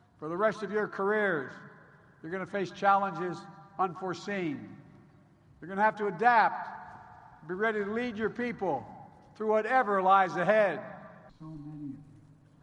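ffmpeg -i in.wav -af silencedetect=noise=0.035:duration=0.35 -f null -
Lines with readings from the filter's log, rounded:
silence_start: 1.42
silence_end: 2.33 | silence_duration: 0.91
silence_start: 3.33
silence_end: 3.79 | silence_duration: 0.47
silence_start: 4.52
silence_end: 5.73 | silence_duration: 1.20
silence_start: 6.62
silence_end: 7.50 | silence_duration: 0.88
silence_start: 8.77
silence_end: 9.41 | silence_duration: 0.64
silence_start: 10.75
silence_end: 12.62 | silence_duration: 1.87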